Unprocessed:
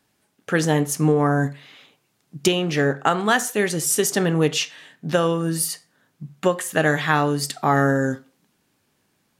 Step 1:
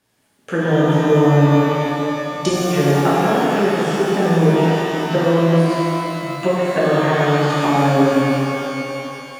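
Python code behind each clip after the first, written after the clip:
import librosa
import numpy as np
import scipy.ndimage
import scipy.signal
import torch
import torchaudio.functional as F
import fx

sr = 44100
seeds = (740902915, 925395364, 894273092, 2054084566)

y = fx.env_lowpass_down(x, sr, base_hz=640.0, full_db=-15.0)
y = fx.rev_shimmer(y, sr, seeds[0], rt60_s=3.1, semitones=12, shimmer_db=-8, drr_db=-8.5)
y = F.gain(torch.from_numpy(y), -2.5).numpy()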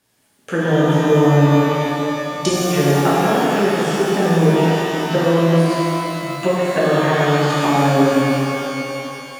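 y = fx.high_shelf(x, sr, hz=4300.0, db=5.0)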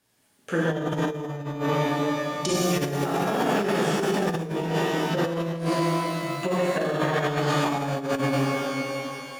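y = fx.over_compress(x, sr, threshold_db=-17.0, ratio=-0.5)
y = F.gain(torch.from_numpy(y), -7.0).numpy()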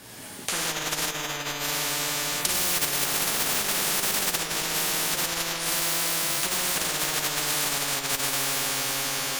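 y = fx.spectral_comp(x, sr, ratio=10.0)
y = F.gain(torch.from_numpy(y), 4.0).numpy()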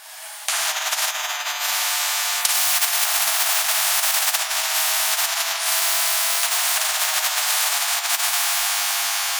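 y = fx.brickwall_highpass(x, sr, low_hz=610.0)
y = F.gain(torch.from_numpy(y), 6.0).numpy()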